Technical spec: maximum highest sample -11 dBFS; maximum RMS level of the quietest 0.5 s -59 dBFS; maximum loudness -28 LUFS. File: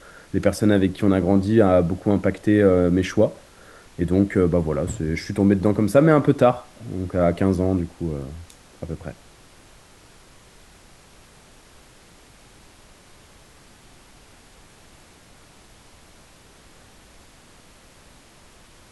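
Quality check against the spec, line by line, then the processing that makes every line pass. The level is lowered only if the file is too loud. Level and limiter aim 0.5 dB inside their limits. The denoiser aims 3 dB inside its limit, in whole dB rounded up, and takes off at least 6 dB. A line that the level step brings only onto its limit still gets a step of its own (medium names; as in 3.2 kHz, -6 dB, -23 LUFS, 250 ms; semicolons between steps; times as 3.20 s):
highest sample -3.5 dBFS: fail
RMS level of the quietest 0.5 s -50 dBFS: fail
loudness -20.5 LUFS: fail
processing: noise reduction 6 dB, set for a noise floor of -50 dBFS; trim -8 dB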